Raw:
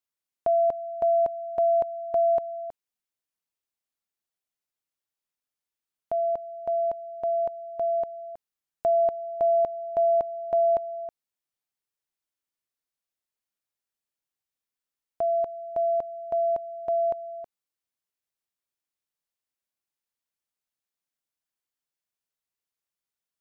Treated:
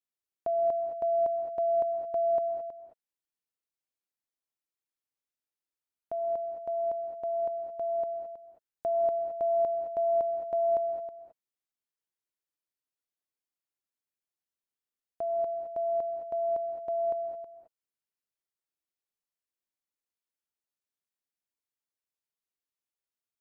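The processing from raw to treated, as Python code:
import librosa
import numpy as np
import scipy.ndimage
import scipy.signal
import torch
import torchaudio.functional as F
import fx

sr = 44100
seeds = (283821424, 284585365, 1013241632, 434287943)

y = fx.peak_eq(x, sr, hz=350.0, db=4.0, octaves=1.1)
y = fx.rev_gated(y, sr, seeds[0], gate_ms=240, shape='rising', drr_db=4.0)
y = F.gain(torch.from_numpy(y), -8.0).numpy()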